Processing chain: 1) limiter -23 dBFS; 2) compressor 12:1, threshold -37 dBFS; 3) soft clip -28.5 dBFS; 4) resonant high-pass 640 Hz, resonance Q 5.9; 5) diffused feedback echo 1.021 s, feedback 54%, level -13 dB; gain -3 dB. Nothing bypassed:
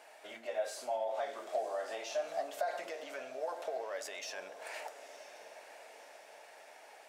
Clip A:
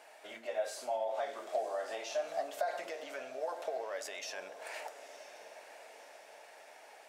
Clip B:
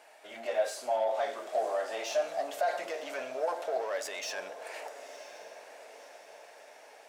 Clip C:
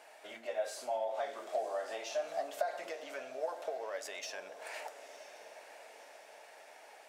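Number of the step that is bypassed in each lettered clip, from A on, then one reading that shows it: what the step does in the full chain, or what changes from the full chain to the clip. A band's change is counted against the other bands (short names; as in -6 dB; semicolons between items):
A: 3, distortion -27 dB; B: 2, mean gain reduction 4.0 dB; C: 1, crest factor change +2.5 dB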